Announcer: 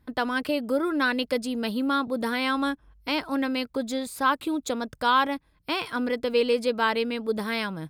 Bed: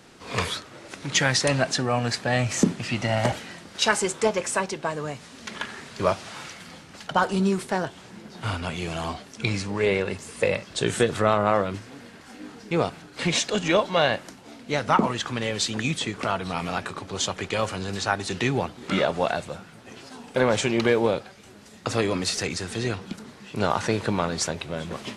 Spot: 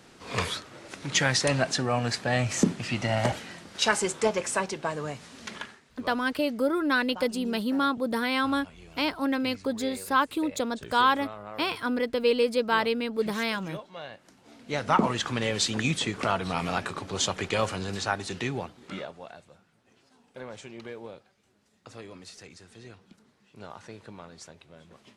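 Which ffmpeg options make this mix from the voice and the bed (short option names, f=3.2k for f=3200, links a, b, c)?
-filter_complex "[0:a]adelay=5900,volume=-0.5dB[a];[1:a]volume=17dB,afade=t=out:st=5.49:d=0.31:silence=0.133352,afade=t=in:st=14.18:d=0.99:silence=0.105925,afade=t=out:st=17.52:d=1.66:silence=0.105925[b];[a][b]amix=inputs=2:normalize=0"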